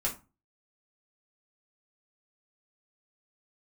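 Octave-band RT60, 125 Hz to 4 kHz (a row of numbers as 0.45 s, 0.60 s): 0.45 s, 0.35 s, 0.25 s, 0.30 s, 0.25 s, 0.20 s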